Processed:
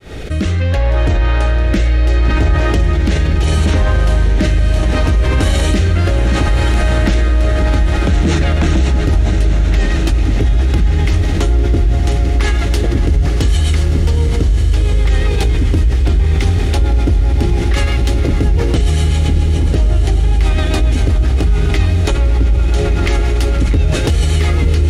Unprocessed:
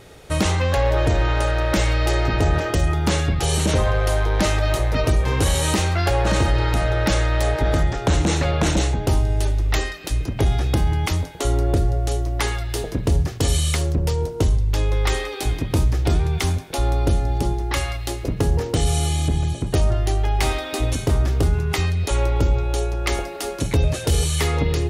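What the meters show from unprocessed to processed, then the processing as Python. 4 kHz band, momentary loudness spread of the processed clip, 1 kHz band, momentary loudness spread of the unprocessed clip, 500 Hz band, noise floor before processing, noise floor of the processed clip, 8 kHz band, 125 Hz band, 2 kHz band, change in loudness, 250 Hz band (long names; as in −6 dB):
+2.5 dB, 1 LU, +1.0 dB, 4 LU, +2.5 dB, −31 dBFS, −15 dBFS, −2.0 dB, +7.5 dB, +4.5 dB, +7.0 dB, +6.5 dB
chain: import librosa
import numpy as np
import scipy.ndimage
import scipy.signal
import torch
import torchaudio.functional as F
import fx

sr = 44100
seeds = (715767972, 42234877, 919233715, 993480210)

p1 = fx.fade_in_head(x, sr, length_s=1.53)
p2 = fx.lowpass(p1, sr, hz=2100.0, slope=6)
p3 = fx.low_shelf(p2, sr, hz=110.0, db=2.5)
p4 = fx.echo_diffused(p3, sr, ms=601, feedback_pct=56, wet_db=-10)
p5 = fx.rider(p4, sr, range_db=3, speed_s=0.5)
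p6 = p4 + (p5 * 10.0 ** (-0.5 / 20.0))
p7 = fx.rotary_switch(p6, sr, hz=0.7, then_hz=7.5, switch_at_s=7.42)
p8 = np.clip(p7, -10.0 ** (-3.5 / 20.0), 10.0 ** (-3.5 / 20.0))
p9 = fx.graphic_eq_10(p8, sr, hz=(125, 500, 1000), db=(-7, -7, -5))
p10 = fx.echo_diffused(p9, sr, ms=1189, feedback_pct=50, wet_db=-7)
p11 = fx.env_flatten(p10, sr, amount_pct=70)
y = p11 * 10.0 ** (-2.0 / 20.0)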